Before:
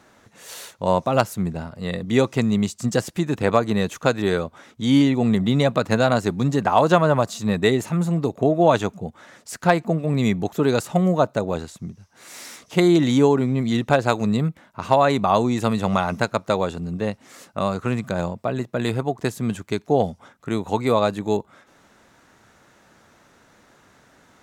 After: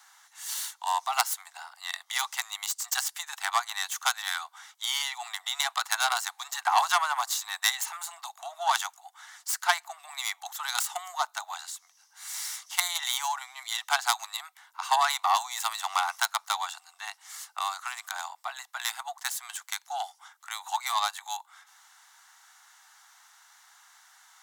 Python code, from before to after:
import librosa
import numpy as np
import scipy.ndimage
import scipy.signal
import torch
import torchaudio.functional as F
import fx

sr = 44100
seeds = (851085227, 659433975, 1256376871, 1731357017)

y = fx.tracing_dist(x, sr, depth_ms=0.14)
y = scipy.signal.sosfilt(scipy.signal.butter(16, 750.0, 'highpass', fs=sr, output='sos'), y)
y = fx.high_shelf(y, sr, hz=3900.0, db=12.0)
y = fx.notch(y, sr, hz=2500.0, q=8.3)
y = F.gain(torch.from_numpy(y), -3.5).numpy()